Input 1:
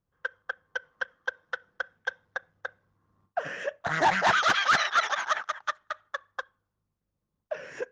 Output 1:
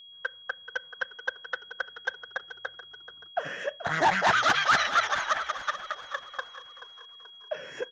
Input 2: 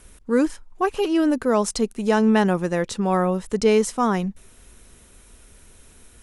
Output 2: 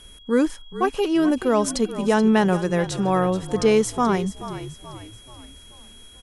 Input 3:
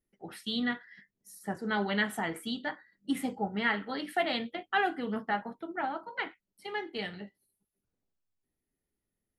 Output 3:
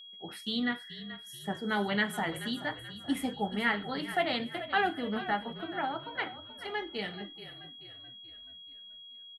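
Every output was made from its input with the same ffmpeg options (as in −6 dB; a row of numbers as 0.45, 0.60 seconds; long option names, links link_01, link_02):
-filter_complex "[0:a]asplit=6[link_01][link_02][link_03][link_04][link_05][link_06];[link_02]adelay=431,afreqshift=-41,volume=-13dB[link_07];[link_03]adelay=862,afreqshift=-82,volume=-19.7dB[link_08];[link_04]adelay=1293,afreqshift=-123,volume=-26.5dB[link_09];[link_05]adelay=1724,afreqshift=-164,volume=-33.2dB[link_10];[link_06]adelay=2155,afreqshift=-205,volume=-40dB[link_11];[link_01][link_07][link_08][link_09][link_10][link_11]amix=inputs=6:normalize=0,aeval=exprs='val(0)+0.00447*sin(2*PI*3300*n/s)':channel_layout=same"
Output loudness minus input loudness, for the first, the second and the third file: 0.0, +0.5, 0.0 LU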